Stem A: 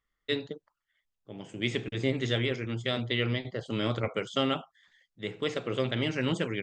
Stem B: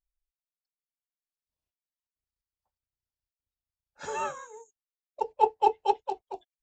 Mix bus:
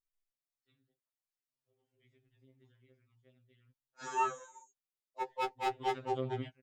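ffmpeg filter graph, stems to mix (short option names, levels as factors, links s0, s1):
-filter_complex "[0:a]highshelf=f=3300:g=-11,acompressor=threshold=0.0316:ratio=6,adelay=400,volume=0.501,asplit=3[s0][s1][s2];[s0]atrim=end=3.71,asetpts=PTS-STARTPTS,afade=t=out:st=3.706:d=0.004:c=hsin[s3];[s1]atrim=start=3.71:end=5.26,asetpts=PTS-STARTPTS,volume=0[s4];[s2]atrim=start=5.26,asetpts=PTS-STARTPTS,afade=t=in:d=0.004:c=hsin[s5];[s3][s4][s5]concat=n=3:v=0:a=1[s6];[1:a]volume=0.841,asplit=2[s7][s8];[s8]apad=whole_len=309747[s9];[s6][s9]sidechaingate=range=0.0447:threshold=0.00251:ratio=16:detection=peak[s10];[s10][s7]amix=inputs=2:normalize=0,volume=15.8,asoftclip=hard,volume=0.0631,afftfilt=real='re*2.45*eq(mod(b,6),0)':imag='im*2.45*eq(mod(b,6),0)':win_size=2048:overlap=0.75"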